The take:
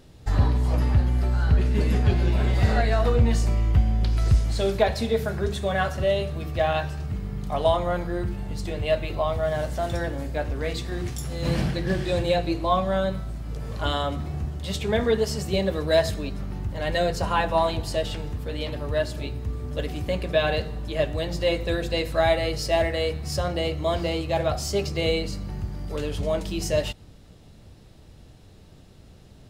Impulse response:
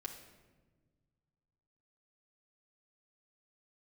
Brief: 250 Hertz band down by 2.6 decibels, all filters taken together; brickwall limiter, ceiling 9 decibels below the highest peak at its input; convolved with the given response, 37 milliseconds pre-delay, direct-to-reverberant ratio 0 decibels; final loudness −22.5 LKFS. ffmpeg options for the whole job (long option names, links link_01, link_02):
-filter_complex "[0:a]equalizer=frequency=250:width_type=o:gain=-4,alimiter=limit=-17.5dB:level=0:latency=1,asplit=2[link_01][link_02];[1:a]atrim=start_sample=2205,adelay=37[link_03];[link_02][link_03]afir=irnorm=-1:irlink=0,volume=2dB[link_04];[link_01][link_04]amix=inputs=2:normalize=0,volume=3dB"